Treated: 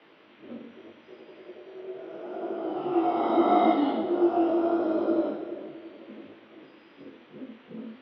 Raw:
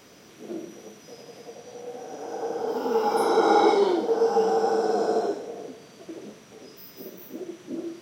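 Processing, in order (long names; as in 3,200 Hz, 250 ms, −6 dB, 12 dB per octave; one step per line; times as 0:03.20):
single-sideband voice off tune −110 Hz 390–3,500 Hz
chorus effect 0.78 Hz, delay 18 ms, depth 3.5 ms
on a send: echo with a time of its own for lows and highs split 600 Hz, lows 333 ms, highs 182 ms, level −14.5 dB
on the sum: level +1.5 dB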